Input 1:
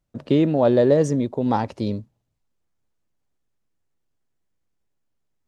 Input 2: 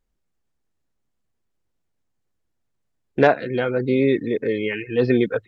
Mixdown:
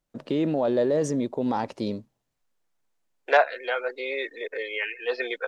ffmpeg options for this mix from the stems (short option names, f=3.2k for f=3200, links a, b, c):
-filter_complex "[0:a]alimiter=limit=-13.5dB:level=0:latency=1:release=26,volume=-0.5dB[a];[1:a]highpass=f=570:w=0.5412,highpass=f=570:w=1.3066,adelay=100,volume=0dB[b];[a][b]amix=inputs=2:normalize=0,equalizer=f=77:t=o:w=1.8:g=-14.5"